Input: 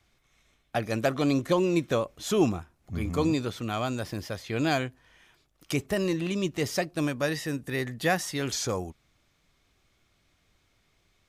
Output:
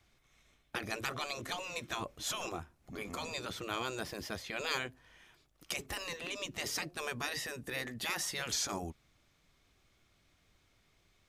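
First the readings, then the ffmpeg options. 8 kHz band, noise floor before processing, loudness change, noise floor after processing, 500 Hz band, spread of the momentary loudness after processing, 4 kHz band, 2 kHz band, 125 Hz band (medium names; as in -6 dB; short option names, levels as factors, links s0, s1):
-2.0 dB, -70 dBFS, -9.5 dB, -72 dBFS, -14.5 dB, 7 LU, -2.0 dB, -4.5 dB, -16.5 dB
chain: -af "acontrast=53,afftfilt=real='re*lt(hypot(re,im),0.251)':imag='im*lt(hypot(re,im),0.251)':win_size=1024:overlap=0.75,volume=0.398"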